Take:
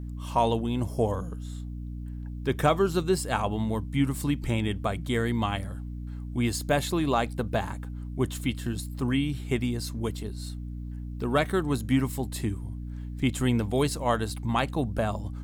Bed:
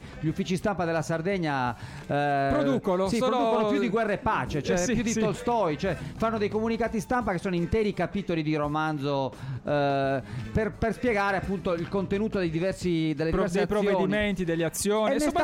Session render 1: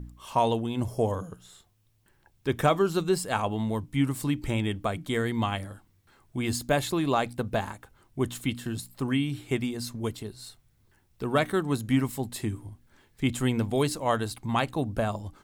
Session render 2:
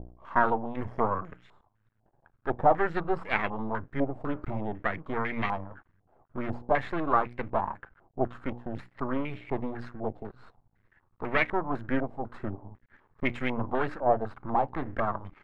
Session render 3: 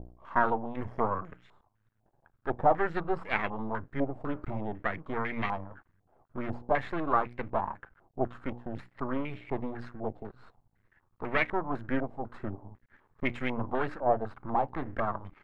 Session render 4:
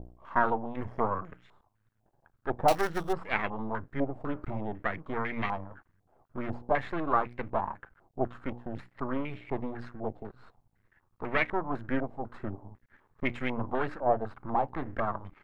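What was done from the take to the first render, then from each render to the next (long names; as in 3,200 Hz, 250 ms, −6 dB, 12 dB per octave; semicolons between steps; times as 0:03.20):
hum removal 60 Hz, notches 5
half-wave rectification; low-pass on a step sequencer 4 Hz 710–2,200 Hz
level −2 dB
0:02.68–0:03.13: gap after every zero crossing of 0.17 ms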